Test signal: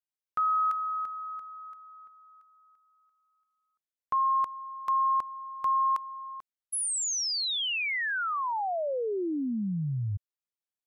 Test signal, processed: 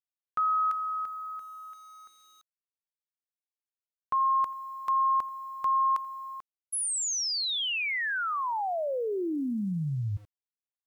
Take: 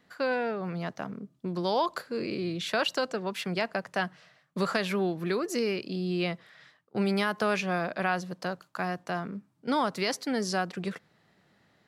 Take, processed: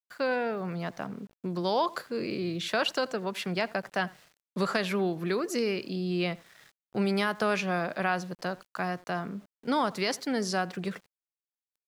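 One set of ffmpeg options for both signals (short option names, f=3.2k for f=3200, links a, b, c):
-filter_complex "[0:a]asplit=2[a][b];[b]adelay=84,lowpass=f=2.7k:p=1,volume=-21dB,asplit=2[c][d];[d]adelay=84,lowpass=f=2.7k:p=1,volume=0.21[e];[a][c][e]amix=inputs=3:normalize=0,aeval=exprs='val(0)*gte(abs(val(0)),0.00211)':c=same"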